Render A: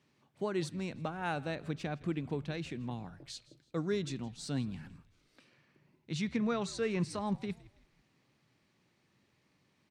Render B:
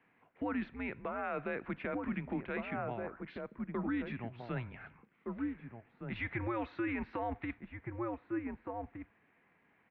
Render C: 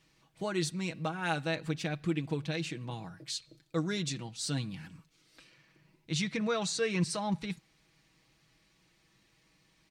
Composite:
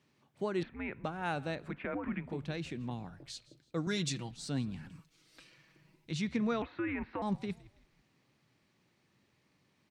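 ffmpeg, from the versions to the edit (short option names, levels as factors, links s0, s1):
-filter_complex "[1:a]asplit=3[s0][s1][s2];[2:a]asplit=2[s3][s4];[0:a]asplit=6[s5][s6][s7][s8][s9][s10];[s5]atrim=end=0.632[s11];[s0]atrim=start=0.628:end=1.042[s12];[s6]atrim=start=1.038:end=1.79[s13];[s1]atrim=start=1.55:end=2.44[s14];[s7]atrim=start=2.2:end=3.872[s15];[s3]atrim=start=3.868:end=4.312[s16];[s8]atrim=start=4.308:end=4.902[s17];[s4]atrim=start=4.898:end=6.112[s18];[s9]atrim=start=6.108:end=6.622[s19];[s2]atrim=start=6.618:end=7.222[s20];[s10]atrim=start=7.218[s21];[s11][s12]acrossfade=d=0.004:c1=hsin:c2=hsin[s22];[s22][s13]acrossfade=d=0.004:c1=hsin:c2=hsin[s23];[s23][s14]acrossfade=d=0.24:c1=tri:c2=tri[s24];[s24][s15]acrossfade=d=0.24:c1=tri:c2=tri[s25];[s25][s16]acrossfade=d=0.004:c1=hsin:c2=hsin[s26];[s26][s17]acrossfade=d=0.004:c1=hsin:c2=hsin[s27];[s27][s18]acrossfade=d=0.004:c1=hsin:c2=hsin[s28];[s28][s19]acrossfade=d=0.004:c1=hsin:c2=hsin[s29];[s29][s20]acrossfade=d=0.004:c1=hsin:c2=hsin[s30];[s30][s21]acrossfade=d=0.004:c1=hsin:c2=hsin"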